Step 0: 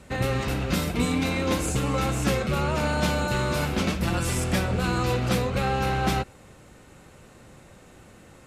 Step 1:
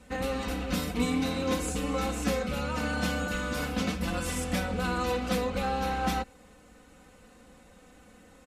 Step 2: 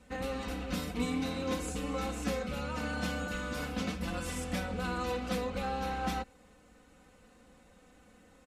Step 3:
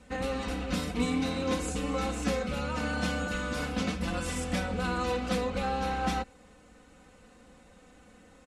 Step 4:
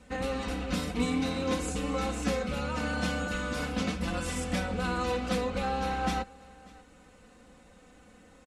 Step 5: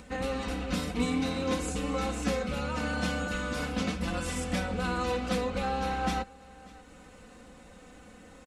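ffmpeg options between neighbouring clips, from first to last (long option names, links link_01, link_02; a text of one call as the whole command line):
ffmpeg -i in.wav -af "aecho=1:1:4:0.85,volume=-7dB" out.wav
ffmpeg -i in.wav -af "highshelf=frequency=11000:gain=-4.5,volume=-5dB" out.wav
ffmpeg -i in.wav -af "lowpass=frequency=11000:width=0.5412,lowpass=frequency=11000:width=1.3066,volume=4dB" out.wav
ffmpeg -i in.wav -af "aecho=1:1:592:0.0668" out.wav
ffmpeg -i in.wav -af "acompressor=mode=upward:threshold=-44dB:ratio=2.5" out.wav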